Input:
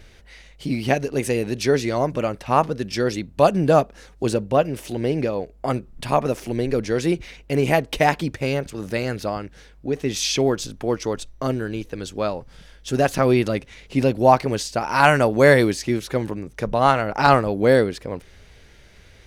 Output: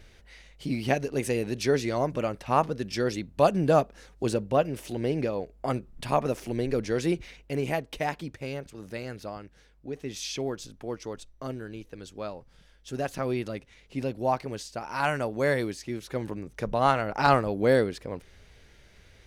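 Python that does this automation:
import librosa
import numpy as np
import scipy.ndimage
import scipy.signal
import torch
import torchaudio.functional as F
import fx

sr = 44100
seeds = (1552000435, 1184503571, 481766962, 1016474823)

y = fx.gain(x, sr, db=fx.line((7.17, -5.5), (7.91, -12.0), (15.91, -12.0), (16.36, -6.0)))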